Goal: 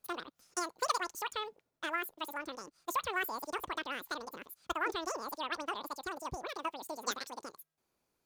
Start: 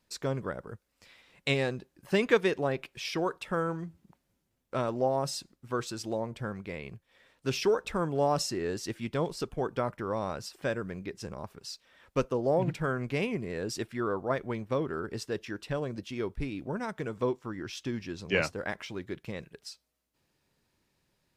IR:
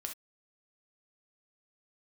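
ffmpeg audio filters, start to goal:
-af "asetrate=114219,aresample=44100,volume=0.473"

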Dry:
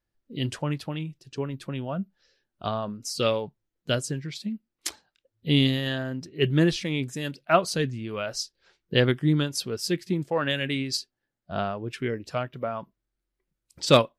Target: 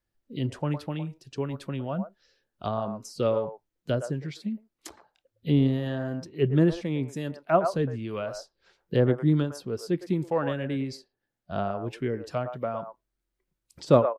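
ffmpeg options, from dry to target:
-filter_complex "[0:a]acrossover=split=470|1200[s0][s1][s2];[s1]aecho=1:1:110:0.631[s3];[s2]acompressor=threshold=0.00708:ratio=10[s4];[s0][s3][s4]amix=inputs=3:normalize=0"

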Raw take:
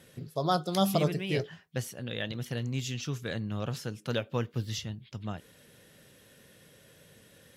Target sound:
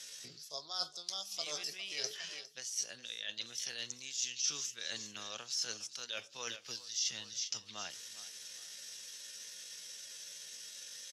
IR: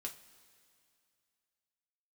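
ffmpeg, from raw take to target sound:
-filter_complex "[0:a]acrossover=split=260|3000[s0][s1][s2];[s0]acompressor=threshold=0.0126:ratio=8[s3];[s3][s1][s2]amix=inputs=3:normalize=0,atempo=0.68,aderivative,asplit=2[s4][s5];[s5]aecho=0:1:408|816|1224:0.126|0.0478|0.0182[s6];[s4][s6]amix=inputs=2:normalize=0,areverse,acompressor=threshold=0.002:ratio=12,areverse,lowpass=f=5800:t=q:w=3.5,volume=4.73"

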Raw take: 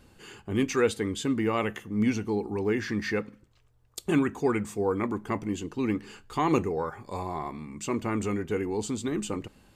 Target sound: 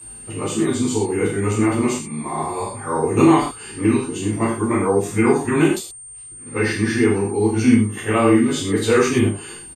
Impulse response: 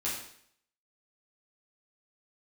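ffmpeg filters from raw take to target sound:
-filter_complex "[0:a]areverse,aeval=exprs='val(0)+0.00891*sin(2*PI*8700*n/s)':c=same[s0];[1:a]atrim=start_sample=2205,atrim=end_sample=6174[s1];[s0][s1]afir=irnorm=-1:irlink=0,aresample=32000,aresample=44100,volume=1.78"

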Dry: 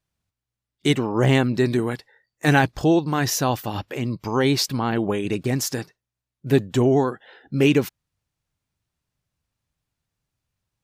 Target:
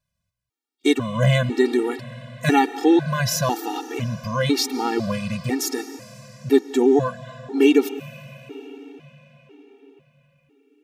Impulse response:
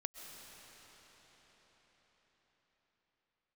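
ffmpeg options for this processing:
-filter_complex "[0:a]asplit=2[s0][s1];[1:a]atrim=start_sample=2205,lowshelf=f=89:g=-10.5[s2];[s1][s2]afir=irnorm=-1:irlink=0,volume=0.708[s3];[s0][s3]amix=inputs=2:normalize=0,afftfilt=real='re*gt(sin(2*PI*1*pts/sr)*(1-2*mod(floor(b*sr/1024/240),2)),0)':imag='im*gt(sin(2*PI*1*pts/sr)*(1-2*mod(floor(b*sr/1024/240),2)),0)':win_size=1024:overlap=0.75"

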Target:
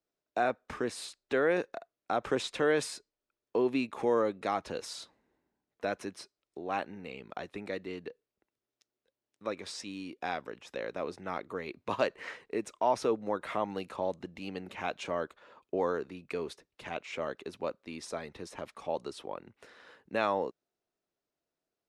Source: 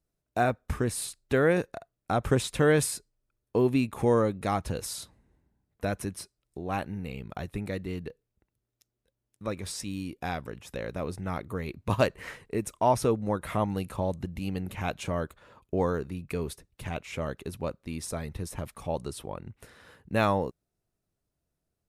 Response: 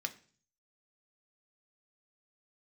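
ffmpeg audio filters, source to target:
-filter_complex "[0:a]acrossover=split=250 6800:gain=0.0891 1 0.0794[s0][s1][s2];[s0][s1][s2]amix=inputs=3:normalize=0,asplit=2[s3][s4];[s4]alimiter=limit=0.0944:level=0:latency=1:release=38,volume=1.06[s5];[s3][s5]amix=inputs=2:normalize=0,volume=0.447"

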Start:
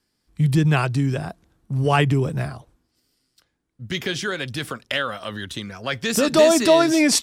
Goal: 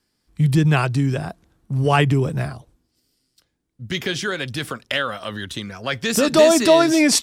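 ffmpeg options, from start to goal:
-filter_complex "[0:a]asettb=1/sr,asplit=3[s0][s1][s2];[s0]atrim=end=2.534[s3];[s1]atrim=start=2.53:end=3.89,asetpts=PTS-STARTPTS,afade=t=in:d=0.004:c=qsin,afade=t=out:st=1.356:d=0.004:c=qsin,equalizer=f=1300:t=o:w=2:g=-5.5[s4];[s2]atrim=start=3.886[s5];[s3][s4]acrossfade=d=0.004:c1=hsin:c2=qsin[s6];[s6][s5]acrossfade=d=0.004:c1=qsin:c2=hsin,volume=1.19"

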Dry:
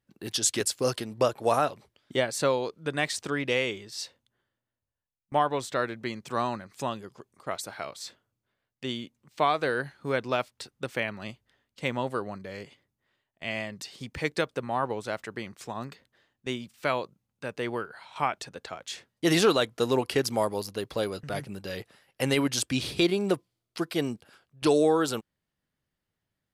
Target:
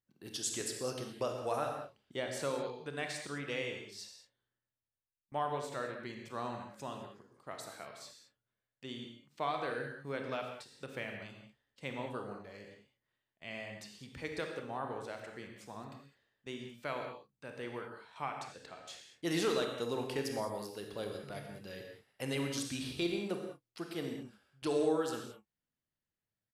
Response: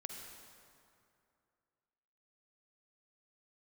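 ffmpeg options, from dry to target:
-filter_complex "[0:a]asplit=2[s0][s1];[s1]adelay=29,volume=0.2[s2];[s0][s2]amix=inputs=2:normalize=0[s3];[1:a]atrim=start_sample=2205,afade=t=out:st=0.31:d=0.01,atrim=end_sample=14112,asetrate=52920,aresample=44100[s4];[s3][s4]afir=irnorm=-1:irlink=0,volume=0.501"

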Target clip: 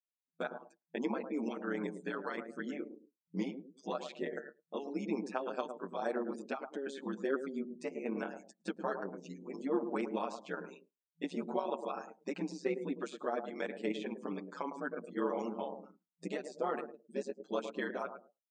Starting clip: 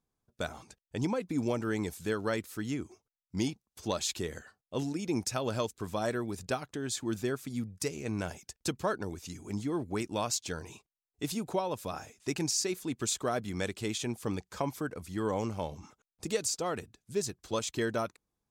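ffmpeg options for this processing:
-filter_complex "[0:a]asettb=1/sr,asplit=3[s0][s1][s2];[s0]atrim=end=9.764[s3];[s1]atrim=start=9.76:end=10.35,asetpts=PTS-STARTPTS,afade=t=in:d=0.004:c=qsin,afade=t=out:st=0.586:d=0.004:c=qsin,aeval=exprs='val(0)+0.5*0.00668*sgn(val(0))':c=same[s4];[s2]atrim=start=10.346[s5];[s3][s4]acrossfade=d=0.004:c1=hsin:c2=qsin[s6];[s6][s5]acrossfade=d=0.004:c1=qsin:c2=hsin,asplit=2[s7][s8];[s8]adelay=107,lowpass=f=990:p=1,volume=0.398,asplit=2[s9][s10];[s10]adelay=107,lowpass=f=990:p=1,volume=0.28,asplit=2[s11][s12];[s12]adelay=107,lowpass=f=990:p=1,volume=0.28[s13];[s7][s9][s11][s13]amix=inputs=4:normalize=0,afftdn=nr=33:nf=-48,bass=f=250:g=-7,treble=f=4000:g=-10,acrossover=split=2800[s14][s15];[s14]alimiter=level_in=1.41:limit=0.0631:level=0:latency=1:release=472,volume=0.708[s16];[s15]acompressor=threshold=0.001:ratio=10[s17];[s16][s17]amix=inputs=2:normalize=0,tremolo=f=140:d=0.824,afftfilt=real='re*between(b*sr/4096,170,9200)':imag='im*between(b*sr/4096,170,9200)':win_size=4096:overlap=0.75,asplit=2[s18][s19];[s19]adelay=7.2,afreqshift=-0.56[s20];[s18][s20]amix=inputs=2:normalize=1,volume=2.66"

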